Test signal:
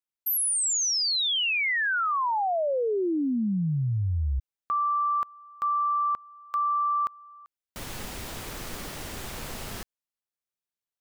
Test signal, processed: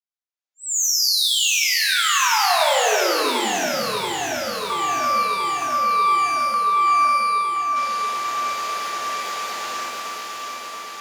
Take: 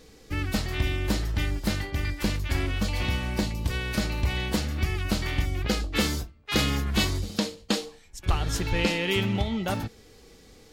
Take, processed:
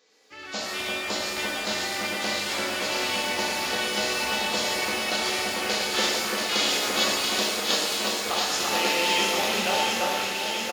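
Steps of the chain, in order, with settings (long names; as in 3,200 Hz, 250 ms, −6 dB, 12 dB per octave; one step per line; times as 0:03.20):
high-pass filter 590 Hz 12 dB per octave
dynamic equaliser 1,900 Hz, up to −6 dB, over −42 dBFS, Q 1.3
automatic gain control gain up to 12 dB
on a send: delay that swaps between a low-pass and a high-pass 341 ms, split 2,200 Hz, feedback 85%, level −2 dB
on the sum: downsampling to 16,000 Hz
reverb with rising layers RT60 1.4 s, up +12 semitones, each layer −8 dB, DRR −2 dB
level −9 dB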